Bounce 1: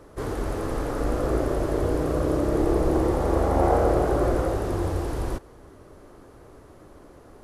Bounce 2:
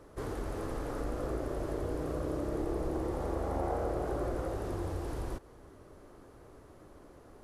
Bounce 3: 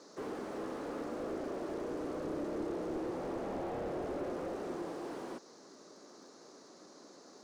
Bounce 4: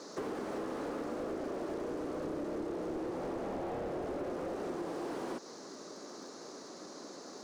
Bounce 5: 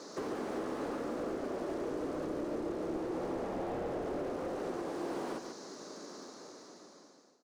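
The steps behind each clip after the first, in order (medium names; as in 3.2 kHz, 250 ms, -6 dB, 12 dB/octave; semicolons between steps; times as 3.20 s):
compression 2:1, threshold -29 dBFS, peak gain reduction 7.5 dB; trim -6 dB
band noise 3.9–6.8 kHz -63 dBFS; elliptic band-pass 200–9000 Hz; slew-rate limiter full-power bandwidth 8.2 Hz
compression, threshold -43 dBFS, peak gain reduction 9.5 dB; trim +8 dB
fade out at the end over 1.49 s; on a send: delay 142 ms -6.5 dB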